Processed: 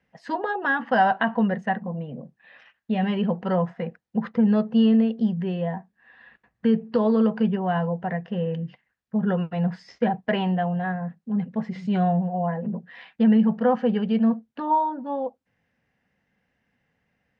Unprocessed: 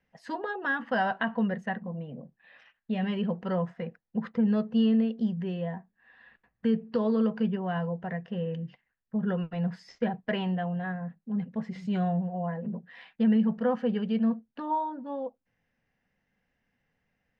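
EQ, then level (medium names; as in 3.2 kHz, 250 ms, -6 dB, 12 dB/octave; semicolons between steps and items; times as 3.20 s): high-pass 57 Hz; distance through air 56 m; dynamic bell 800 Hz, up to +5 dB, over -50 dBFS, Q 3; +5.5 dB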